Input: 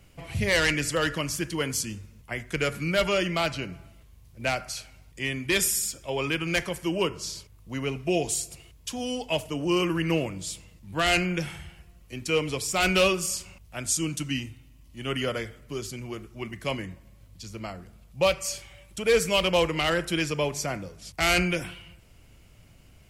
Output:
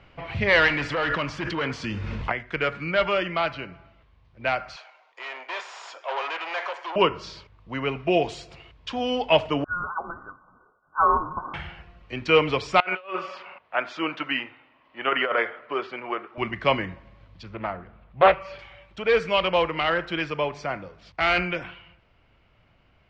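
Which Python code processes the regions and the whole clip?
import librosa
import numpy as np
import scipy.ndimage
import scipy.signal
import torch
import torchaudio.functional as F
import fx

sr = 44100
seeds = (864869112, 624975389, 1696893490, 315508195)

y = fx.chain(x, sr, fx.clip_hard(threshold_db=-26.0),
    fx.env_flatten(amount_pct=100), at=(0.68, 2.32))
y = fx.chain(y, sr, fx.tube_stage(drive_db=36.0, bias=0.45),
    fx.cabinet(low_hz=480.0, low_slope=24, high_hz=8800.0, hz=(710.0, 1000.0, 6700.0), db=(4, 6, 6)), at=(4.76, 6.96))
y = fx.chain(y, sr, fx.cheby_ripple_highpass(hz=980.0, ripple_db=9),
    fx.freq_invert(carrier_hz=2500), at=(9.64, 11.54))
y = fx.chain(y, sr, fx.bandpass_edges(low_hz=520.0, high_hz=2100.0),
    fx.over_compress(threshold_db=-34.0, ratio=-0.5), at=(12.8, 16.38))
y = fx.chain(y, sr, fx.lowpass(hz=2500.0, slope=12),
    fx.doppler_dist(depth_ms=0.39), at=(17.43, 18.59))
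y = fx.peak_eq(y, sr, hz=1100.0, db=11.0, octaves=2.5)
y = fx.rider(y, sr, range_db=10, speed_s=2.0)
y = scipy.signal.sosfilt(scipy.signal.butter(4, 4200.0, 'lowpass', fs=sr, output='sos'), y)
y = F.gain(torch.from_numpy(y), -4.5).numpy()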